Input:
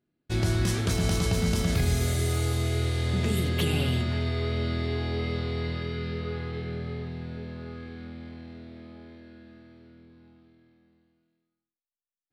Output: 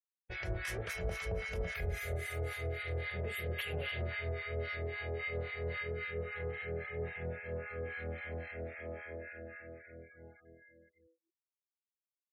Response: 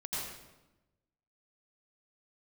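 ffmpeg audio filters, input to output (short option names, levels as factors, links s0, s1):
-filter_complex "[0:a]equalizer=f=125:t=o:w=1:g=-10,equalizer=f=250:t=o:w=1:g=-11,equalizer=f=500:t=o:w=1:g=10,equalizer=f=1000:t=o:w=1:g=-7,equalizer=f=2000:t=o:w=1:g=10,equalizer=f=4000:t=o:w=1:g=-10,equalizer=f=8000:t=o:w=1:g=-8,areverse,acompressor=threshold=0.00708:ratio=5,areverse,afftfilt=real='re*gte(hypot(re,im),0.001)':imag='im*gte(hypot(re,im),0.001)':win_size=1024:overlap=0.75,equalizer=f=290:t=o:w=0.77:g=-11,acrossover=split=940[s0][s1];[s0]aeval=exprs='val(0)*(1-1/2+1/2*cos(2*PI*3.7*n/s))':c=same[s2];[s1]aeval=exprs='val(0)*(1-1/2-1/2*cos(2*PI*3.7*n/s))':c=same[s3];[s2][s3]amix=inputs=2:normalize=0,volume=3.76"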